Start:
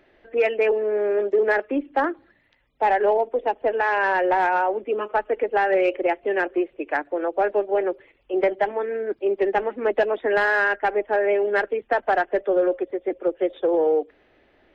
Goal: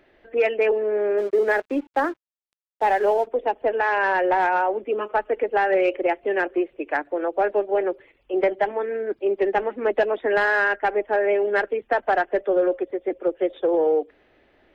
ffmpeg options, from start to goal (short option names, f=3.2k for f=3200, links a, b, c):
-filter_complex "[0:a]asplit=3[a][b][c];[a]afade=t=out:st=1.17:d=0.02[d];[b]aeval=exprs='sgn(val(0))*max(abs(val(0))-0.00631,0)':c=same,afade=t=in:st=1.17:d=0.02,afade=t=out:st=3.26:d=0.02[e];[c]afade=t=in:st=3.26:d=0.02[f];[d][e][f]amix=inputs=3:normalize=0"